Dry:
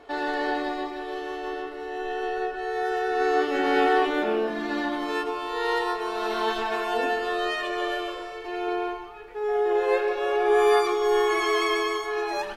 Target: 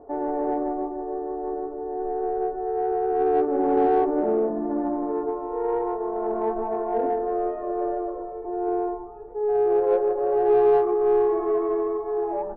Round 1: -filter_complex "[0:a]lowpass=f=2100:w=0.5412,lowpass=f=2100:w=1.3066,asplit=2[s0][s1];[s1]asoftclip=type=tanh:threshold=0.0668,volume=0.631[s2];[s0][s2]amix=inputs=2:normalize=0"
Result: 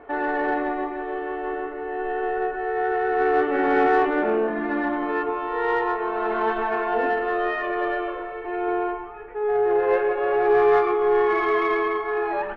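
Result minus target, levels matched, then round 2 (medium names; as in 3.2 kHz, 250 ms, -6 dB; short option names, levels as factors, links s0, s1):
2 kHz band +18.0 dB
-filter_complex "[0:a]lowpass=f=800:w=0.5412,lowpass=f=800:w=1.3066,asplit=2[s0][s1];[s1]asoftclip=type=tanh:threshold=0.0668,volume=0.631[s2];[s0][s2]amix=inputs=2:normalize=0"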